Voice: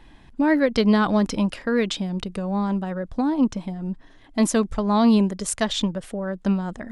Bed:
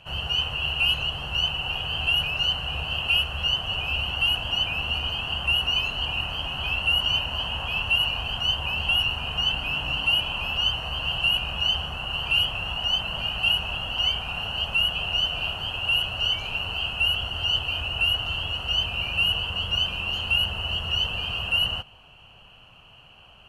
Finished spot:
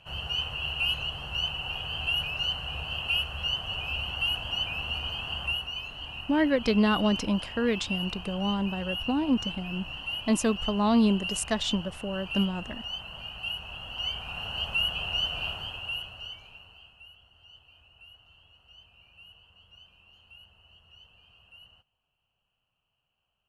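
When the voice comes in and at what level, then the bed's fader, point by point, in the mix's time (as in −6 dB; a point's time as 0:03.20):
5.90 s, −5.0 dB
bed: 0:05.45 −5.5 dB
0:05.69 −12 dB
0:13.59 −12 dB
0:14.58 −4.5 dB
0:15.51 −4.5 dB
0:17.14 −30 dB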